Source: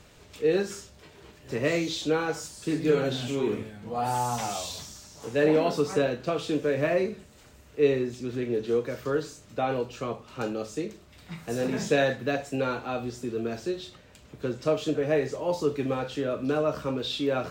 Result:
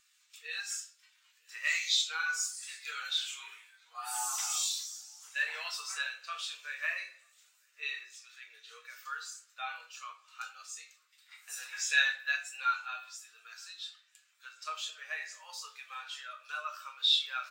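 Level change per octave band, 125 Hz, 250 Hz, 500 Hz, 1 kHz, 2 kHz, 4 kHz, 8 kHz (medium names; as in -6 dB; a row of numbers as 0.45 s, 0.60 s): under -40 dB, under -40 dB, -34.5 dB, -8.0 dB, +2.0 dB, +4.0 dB, +4.5 dB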